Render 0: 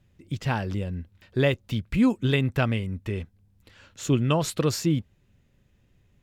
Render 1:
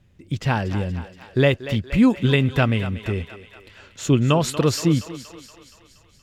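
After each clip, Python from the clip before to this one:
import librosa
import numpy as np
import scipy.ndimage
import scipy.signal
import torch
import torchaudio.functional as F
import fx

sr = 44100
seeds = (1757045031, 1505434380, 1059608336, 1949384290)

y = fx.high_shelf(x, sr, hz=12000.0, db=-7.0)
y = fx.echo_thinned(y, sr, ms=236, feedback_pct=63, hz=390.0, wet_db=-12.0)
y = y * 10.0 ** (5.0 / 20.0)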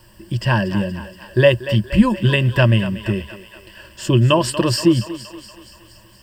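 y = fx.dmg_noise_colour(x, sr, seeds[0], colour='pink', level_db=-55.0)
y = fx.ripple_eq(y, sr, per_octave=1.3, db=15)
y = y * 10.0 ** (1.5 / 20.0)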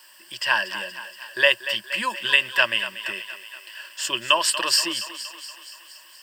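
y = scipy.signal.sosfilt(scipy.signal.butter(2, 1300.0, 'highpass', fs=sr, output='sos'), x)
y = y * 10.0 ** (4.0 / 20.0)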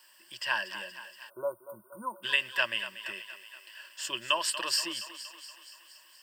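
y = fx.spec_erase(x, sr, start_s=1.3, length_s=0.94, low_hz=1500.0, high_hz=8900.0)
y = y * 10.0 ** (-9.0 / 20.0)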